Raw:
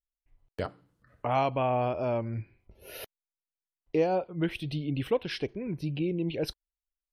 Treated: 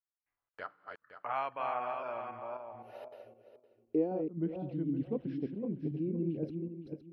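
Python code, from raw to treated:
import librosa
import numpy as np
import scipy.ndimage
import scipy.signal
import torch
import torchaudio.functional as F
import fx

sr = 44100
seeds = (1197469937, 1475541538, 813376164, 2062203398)

y = fx.reverse_delay_fb(x, sr, ms=257, feedback_pct=46, wet_db=-4.0)
y = fx.filter_sweep_bandpass(y, sr, from_hz=1400.0, to_hz=240.0, start_s=2.23, end_s=4.32, q=2.2)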